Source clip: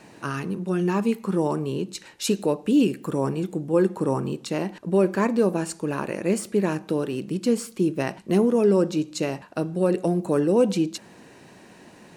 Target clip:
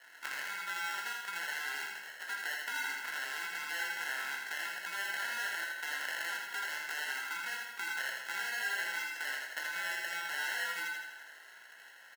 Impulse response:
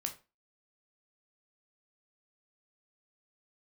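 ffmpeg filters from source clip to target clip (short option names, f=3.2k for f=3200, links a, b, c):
-filter_complex "[0:a]dynaudnorm=f=300:g=13:m=9dB,alimiter=limit=-15dB:level=0:latency=1,acompressor=threshold=-26dB:ratio=6,lowpass=f=2.3k:t=q:w=2.5,acrusher=samples=37:mix=1:aa=0.000001,highpass=f=1.5k:t=q:w=2.8,aecho=1:1:81|162|243|324|405|486|567:0.631|0.341|0.184|0.0994|0.0537|0.029|0.0156[a];[1:a]atrim=start_sample=2205[b];[a][b]afir=irnorm=-1:irlink=0,volume=-6.5dB"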